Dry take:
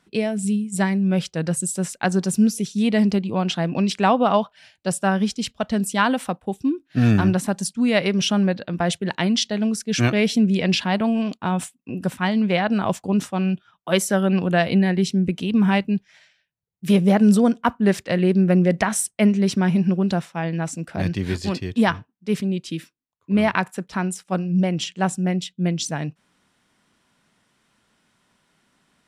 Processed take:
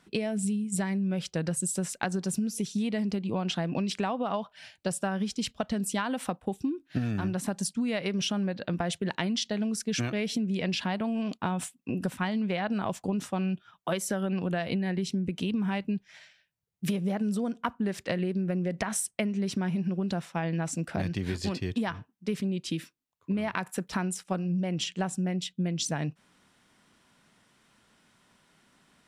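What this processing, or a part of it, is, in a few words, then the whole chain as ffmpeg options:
serial compression, leveller first: -filter_complex "[0:a]acompressor=threshold=-19dB:ratio=2.5,acompressor=threshold=-28dB:ratio=6,asettb=1/sr,asplit=3[a][b][c];[a]atrim=end=23.524[d];[b]atrim=start=23.52:end=24.11,asetpts=PTS-STARTPTS,afade=t=in:d=0.004:c=qsin,afade=t=out:st=0.586:d=0.004:c=qsin,highshelf=f=11k:g=9.5[e];[c]atrim=start=24.106[f];[d][e]acrossfade=d=0.004:c1=hsin:c2=qsin[g];[g][f]acrossfade=d=0.004:c1=qsin:c2=hsin,volume=1dB"

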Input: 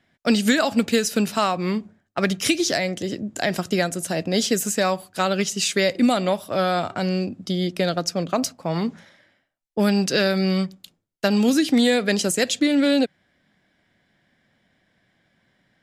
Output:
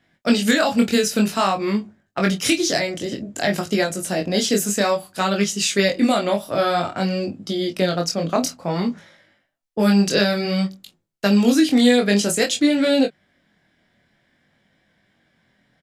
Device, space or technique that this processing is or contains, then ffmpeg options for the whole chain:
double-tracked vocal: -filter_complex "[0:a]asplit=2[a][b];[b]adelay=25,volume=-11dB[c];[a][c]amix=inputs=2:normalize=0,flanger=delay=19:depth=5.8:speed=0.54,volume=4.5dB"

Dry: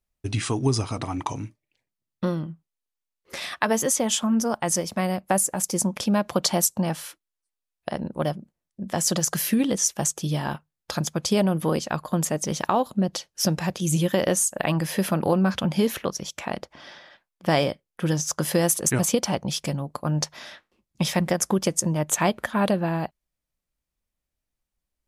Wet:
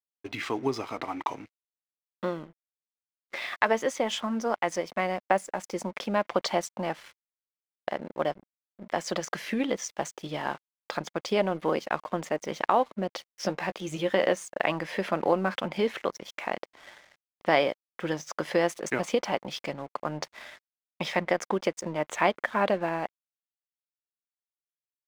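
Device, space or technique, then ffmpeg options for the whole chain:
pocket radio on a weak battery: -filter_complex "[0:a]asettb=1/sr,asplit=3[a][b][c];[a]atrim=end=13.334[d];[b]atrim=start=13.33:end=14.33,asetpts=PTS-STARTPTS,afade=t=in:d=0.004:c=qsin,afade=t=out:st=0.996:d=0.004:c=qsin,asplit=2[e][f];[f]adelay=15,volume=-11.5dB[g];[e][g]amix=inputs=2:normalize=0,atrim=end_sample=44100[h];[c]atrim=start=14.326[i];[d][h]acrossfade=d=0.004:c1=hsin:c2=qsin[j];[j][i]acrossfade=d=0.004:c1=qsin:c2=hsin,highpass=350,lowpass=3.1k,aeval=exprs='sgn(val(0))*max(abs(val(0))-0.00316,0)':c=same,equalizer=f=2.1k:t=o:w=0.2:g=6.5"

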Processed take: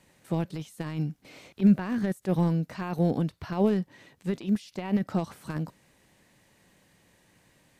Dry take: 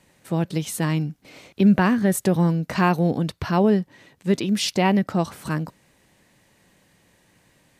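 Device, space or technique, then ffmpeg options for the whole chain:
de-esser from a sidechain: -filter_complex "[0:a]asplit=2[a][b];[b]highpass=4.3k,apad=whole_len=343593[c];[a][c]sidechaincompress=threshold=-49dB:ratio=5:attack=0.96:release=28,volume=-3dB"

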